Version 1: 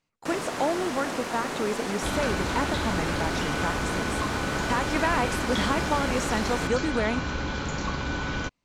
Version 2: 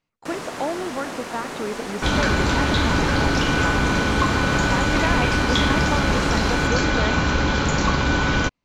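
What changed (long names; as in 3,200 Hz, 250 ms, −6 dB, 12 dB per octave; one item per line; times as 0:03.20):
speech: add high-frequency loss of the air 69 metres
second sound +10.0 dB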